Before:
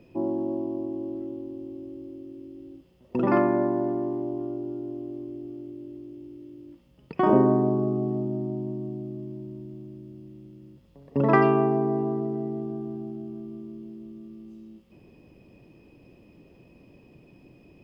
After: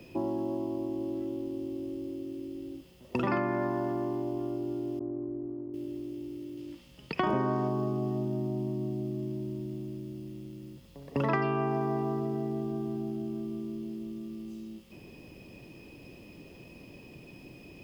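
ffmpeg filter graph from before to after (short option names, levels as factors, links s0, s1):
-filter_complex "[0:a]asettb=1/sr,asplit=3[s0][s1][s2];[s0]atrim=end=4.994[s3];[s1]atrim=start=4.99:end=5.74,asetpts=PTS-STARTPTS,afade=t=in:d=0.004:c=qsin,afade=t=out:st=0.746:d=0.004:c=qsin,lowpass=f=1400:w=0.5412,lowpass=f=1400:w=1.3066,agate=range=0.0224:threshold=0.0158:ratio=3:release=100:detection=peak[s4];[s2]atrim=start=5.736[s5];[s3][s4]acrossfade=d=0.004:c1=hsin:c2=qsin[s6];[s6][s5]acrossfade=d=0.004:c1=qsin:c2=hsin,asettb=1/sr,asplit=3[s7][s8][s9];[s7]atrim=end=6.574[s10];[s8]atrim=start=6.57:end=7.68,asetpts=PTS-STARTPTS,afade=t=in:d=0.004:c=qsin,afade=t=out:st=1.106:d=0.004:c=qsin,lowpass=f=2900:p=1,highshelf=f=2100:g=11[s11];[s9]atrim=start=7.676[s12];[s10][s11]acrossfade=d=0.004:c1=hsin:c2=qsin[s13];[s13][s12]acrossfade=d=0.004:c1=qsin:c2=hsin,highshelf=f=2300:g=11,acrossover=split=130|950[s14][s15][s16];[s14]acompressor=threshold=0.01:ratio=4[s17];[s15]acompressor=threshold=0.0178:ratio=4[s18];[s16]acompressor=threshold=0.0141:ratio=4[s19];[s17][s18][s19]amix=inputs=3:normalize=0,volume=1.41"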